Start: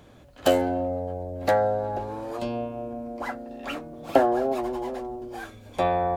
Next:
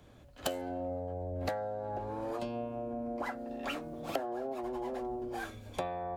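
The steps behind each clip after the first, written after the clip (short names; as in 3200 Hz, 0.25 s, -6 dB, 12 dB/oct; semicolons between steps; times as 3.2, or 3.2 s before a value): compressor 20:1, threshold -33 dBFS, peak gain reduction 21.5 dB; three-band expander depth 40%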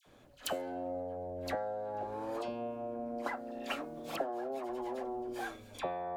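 bell 61 Hz -11.5 dB 2.6 oct; dispersion lows, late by 60 ms, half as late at 1400 Hz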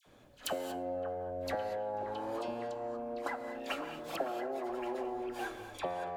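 delay with a stepping band-pass 0.561 s, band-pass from 1200 Hz, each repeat 0.7 oct, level -7 dB; non-linear reverb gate 0.26 s rising, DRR 9 dB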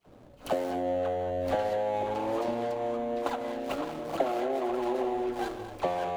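median filter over 25 samples; gain +8.5 dB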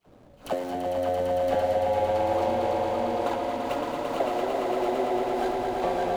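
swelling echo 0.113 s, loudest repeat 5, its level -6.5 dB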